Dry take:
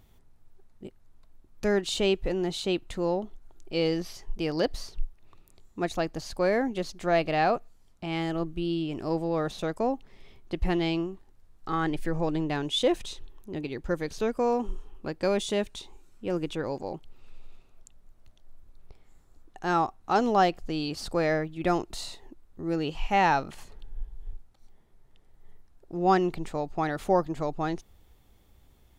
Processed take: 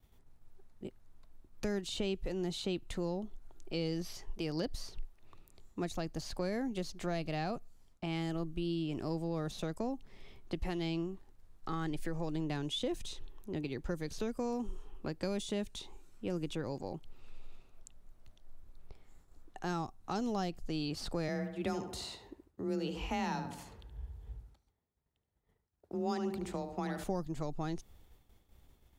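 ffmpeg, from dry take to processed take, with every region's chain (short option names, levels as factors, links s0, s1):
-filter_complex "[0:a]asettb=1/sr,asplit=3[s0][s1][s2];[s0]atrim=end=21.284[s3];[s1]atrim=start=21.28:end=27.04,asetpts=PTS-STARTPTS,afade=t=in:d=0.004:c=qsin,afade=t=out:st=5.756:d=0.004:c=qsin,highpass=43,afreqshift=24,asplit=2[s4][s5];[s5]adelay=73,lowpass=f=2400:p=1,volume=0.398,asplit=2[s6][s7];[s7]adelay=73,lowpass=f=2400:p=1,volume=0.42,asplit=2[s8][s9];[s9]adelay=73,lowpass=f=2400:p=1,volume=0.42,asplit=2[s10][s11];[s11]adelay=73,lowpass=f=2400:p=1,volume=0.42,asplit=2[s12][s13];[s13]adelay=73,lowpass=f=2400:p=1,volume=0.42[s14];[s4][s6][s8][s10][s12][s14]amix=inputs=6:normalize=0,atrim=end_sample=254016[s15];[s2]atrim=start=27.036[s16];[s3][s15]acrossfade=d=0.004:c1=hsin:c2=qsin[s17];[s17][s16]acrossfade=d=0.004:c1=qsin:c2=hsin,agate=range=0.0224:threshold=0.00224:ratio=3:detection=peak,acrossover=split=250|4300[s18][s19][s20];[s18]acompressor=threshold=0.02:ratio=4[s21];[s19]acompressor=threshold=0.0126:ratio=4[s22];[s20]acompressor=threshold=0.00501:ratio=4[s23];[s21][s22][s23]amix=inputs=3:normalize=0,volume=0.841"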